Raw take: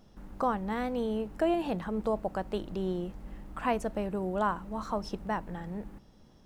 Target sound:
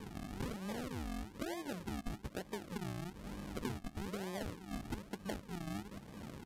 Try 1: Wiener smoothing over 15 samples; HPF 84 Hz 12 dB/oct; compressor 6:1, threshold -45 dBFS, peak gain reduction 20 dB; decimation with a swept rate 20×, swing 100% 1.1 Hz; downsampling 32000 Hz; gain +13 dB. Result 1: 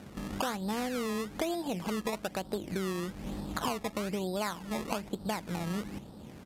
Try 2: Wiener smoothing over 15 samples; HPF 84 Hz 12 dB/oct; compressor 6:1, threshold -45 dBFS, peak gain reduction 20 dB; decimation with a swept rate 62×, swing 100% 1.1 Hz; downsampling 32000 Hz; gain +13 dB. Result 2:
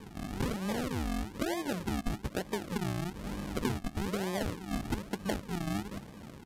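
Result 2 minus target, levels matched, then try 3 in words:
compressor: peak gain reduction -8.5 dB
Wiener smoothing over 15 samples; HPF 84 Hz 12 dB/oct; compressor 6:1, threshold -55 dBFS, peak gain reduction 28.5 dB; decimation with a swept rate 62×, swing 100% 1.1 Hz; downsampling 32000 Hz; gain +13 dB

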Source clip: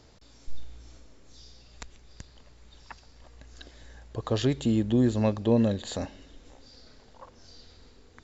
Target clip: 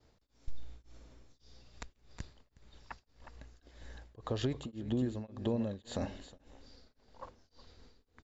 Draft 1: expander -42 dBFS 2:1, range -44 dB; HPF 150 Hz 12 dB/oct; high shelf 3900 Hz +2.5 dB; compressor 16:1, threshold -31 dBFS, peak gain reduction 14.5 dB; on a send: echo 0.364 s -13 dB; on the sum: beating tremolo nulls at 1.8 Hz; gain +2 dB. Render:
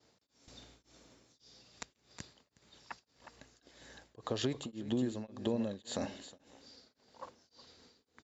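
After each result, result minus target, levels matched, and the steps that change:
8000 Hz band +7.5 dB; 125 Hz band -3.5 dB
change: high shelf 3900 Hz -6 dB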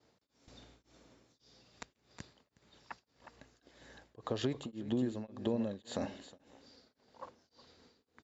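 125 Hz band -4.5 dB
remove: HPF 150 Hz 12 dB/oct

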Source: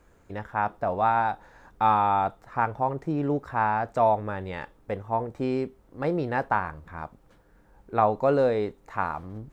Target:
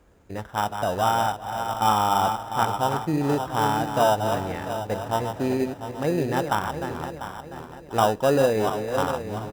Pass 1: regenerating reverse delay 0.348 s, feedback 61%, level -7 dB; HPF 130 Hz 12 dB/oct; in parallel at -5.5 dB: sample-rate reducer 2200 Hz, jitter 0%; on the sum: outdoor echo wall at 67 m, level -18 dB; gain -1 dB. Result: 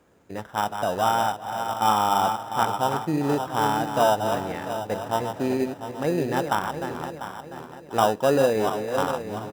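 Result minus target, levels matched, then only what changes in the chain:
125 Hz band -3.0 dB
change: HPF 34 Hz 12 dB/oct

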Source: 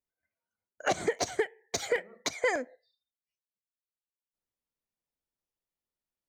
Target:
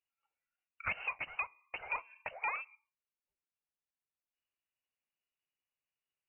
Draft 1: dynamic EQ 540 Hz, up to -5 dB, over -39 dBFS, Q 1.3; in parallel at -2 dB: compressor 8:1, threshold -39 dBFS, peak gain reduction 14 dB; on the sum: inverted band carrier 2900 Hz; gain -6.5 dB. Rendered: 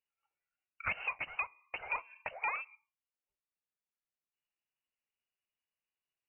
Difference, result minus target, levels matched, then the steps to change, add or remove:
compressor: peak gain reduction -9 dB
change: compressor 8:1, threshold -49 dBFS, peak gain reduction 23 dB

